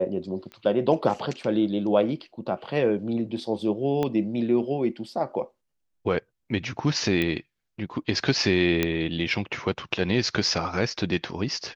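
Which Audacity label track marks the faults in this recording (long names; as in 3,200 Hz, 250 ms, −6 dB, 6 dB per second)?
0.520000	0.520000	click −27 dBFS
4.030000	4.030000	click −14 dBFS
7.220000	7.220000	click −13 dBFS
8.830000	8.830000	click −8 dBFS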